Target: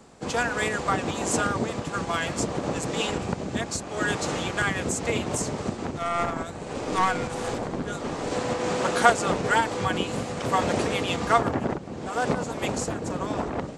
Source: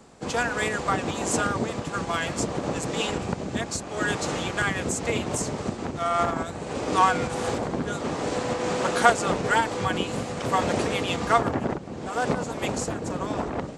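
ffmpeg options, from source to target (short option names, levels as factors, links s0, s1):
-filter_complex "[0:a]asettb=1/sr,asplit=3[s0][s1][s2];[s0]atrim=end=5.984[s3];[s1]atrim=start=5.98:end=8.31,asetpts=PTS-STARTPTS,afade=t=in:d=0.004:c=qsin,afade=t=out:st=2.326:d=0.004:c=qsin,aeval=exprs='(tanh(5.62*val(0)+0.5)-tanh(0.5))/5.62':c=same[s4];[s2]atrim=start=8.306[s5];[s3][s4]acrossfade=d=0.004:c1=hsin:c2=qsin[s6];[s6][s5]acrossfade=d=0.004:c1=qsin:c2=hsin"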